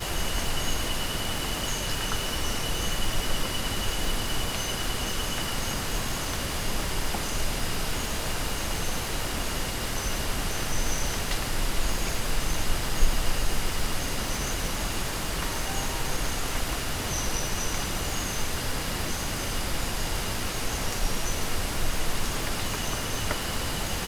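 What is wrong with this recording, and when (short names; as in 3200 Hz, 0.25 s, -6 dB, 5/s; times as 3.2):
crackle 480/s -32 dBFS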